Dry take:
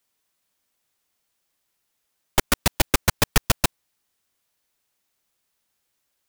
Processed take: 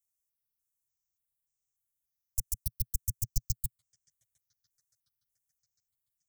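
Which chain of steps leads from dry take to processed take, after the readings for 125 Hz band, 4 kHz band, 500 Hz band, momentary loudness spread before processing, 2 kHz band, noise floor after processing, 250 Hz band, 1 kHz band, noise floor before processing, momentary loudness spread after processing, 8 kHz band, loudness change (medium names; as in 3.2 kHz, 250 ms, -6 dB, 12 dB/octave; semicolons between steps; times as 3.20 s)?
-10.0 dB, -24.5 dB, under -40 dB, 5 LU, under -40 dB, under -85 dBFS, -26.0 dB, under -40 dB, -76 dBFS, 5 LU, -12.0 dB, -13.0 dB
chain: elliptic band-stop 120–6200 Hz, stop band 40 dB; feedback echo behind a band-pass 711 ms, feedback 57%, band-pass 1.4 kHz, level -12.5 dB; stepped phaser 3.4 Hz 840–4000 Hz; trim -7.5 dB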